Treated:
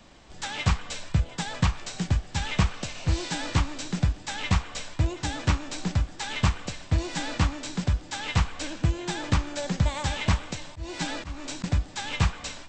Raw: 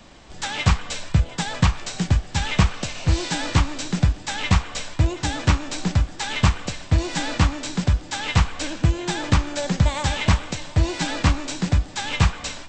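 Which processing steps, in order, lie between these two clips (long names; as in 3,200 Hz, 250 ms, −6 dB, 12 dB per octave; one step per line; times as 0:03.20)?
0:10.59–0:11.64: volume swells 223 ms
level −5.5 dB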